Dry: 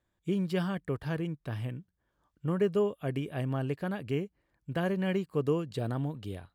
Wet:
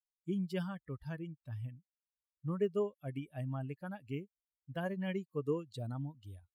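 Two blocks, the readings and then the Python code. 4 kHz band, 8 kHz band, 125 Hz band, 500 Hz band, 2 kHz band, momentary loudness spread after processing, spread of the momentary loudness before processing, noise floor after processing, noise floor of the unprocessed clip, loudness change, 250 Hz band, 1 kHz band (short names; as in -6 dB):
-8.5 dB, n/a, -7.0 dB, -7.0 dB, -8.0 dB, 10 LU, 8 LU, under -85 dBFS, -80 dBFS, -7.0 dB, -7.5 dB, -8.0 dB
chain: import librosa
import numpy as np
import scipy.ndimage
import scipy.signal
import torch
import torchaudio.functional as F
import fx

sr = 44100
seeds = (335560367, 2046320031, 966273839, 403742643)

y = fx.bin_expand(x, sr, power=2.0)
y = y * librosa.db_to_amplitude(-3.5)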